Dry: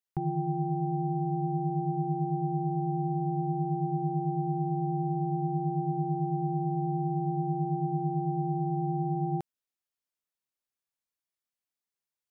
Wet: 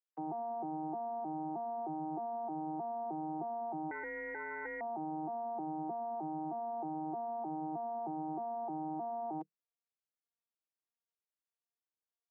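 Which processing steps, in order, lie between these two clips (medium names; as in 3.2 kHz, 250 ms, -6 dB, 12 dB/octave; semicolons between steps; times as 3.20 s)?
vocoder on a broken chord bare fifth, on D#3, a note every 310 ms; high-pass 360 Hz 24 dB/octave; 3.91–4.81 s: ring modulator 1.2 kHz; trim +4 dB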